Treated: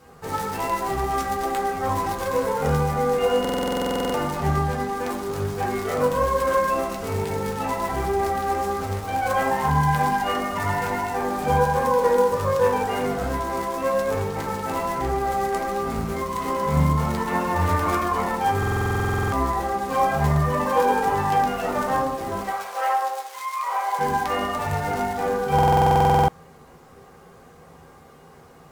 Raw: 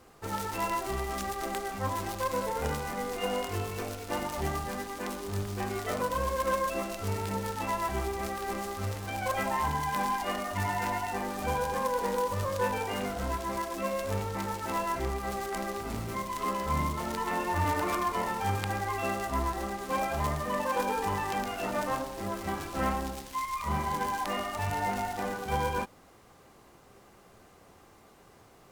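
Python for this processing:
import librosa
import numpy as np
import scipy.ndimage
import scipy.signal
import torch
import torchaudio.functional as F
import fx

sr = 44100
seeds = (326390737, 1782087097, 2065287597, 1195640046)

y = fx.high_shelf(x, sr, hz=8500.0, db=-5.0, at=(4.34, 4.93))
y = fx.steep_highpass(y, sr, hz=520.0, slope=36, at=(22.4, 23.99))
y = fx.quant_float(y, sr, bits=4)
y = fx.rev_fdn(y, sr, rt60_s=0.64, lf_ratio=1.0, hf_ratio=0.3, size_ms=37.0, drr_db=-4.0)
y = fx.buffer_glitch(y, sr, at_s=(3.4, 18.58, 25.54), block=2048, repeats=15)
y = F.gain(torch.from_numpy(y), 2.0).numpy()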